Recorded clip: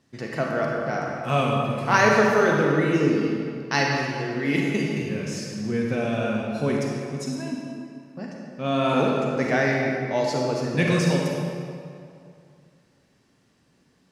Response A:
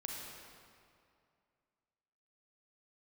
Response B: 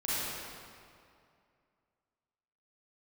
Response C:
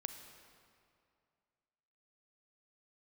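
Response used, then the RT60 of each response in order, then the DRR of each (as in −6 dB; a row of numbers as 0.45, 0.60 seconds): A; 2.4, 2.4, 2.4 seconds; −1.5, −11.0, 7.0 decibels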